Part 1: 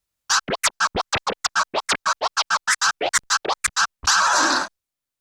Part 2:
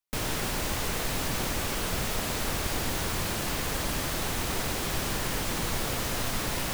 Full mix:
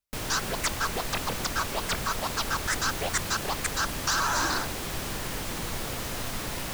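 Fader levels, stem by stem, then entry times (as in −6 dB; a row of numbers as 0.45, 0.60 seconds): −9.5, −3.0 decibels; 0.00, 0.00 seconds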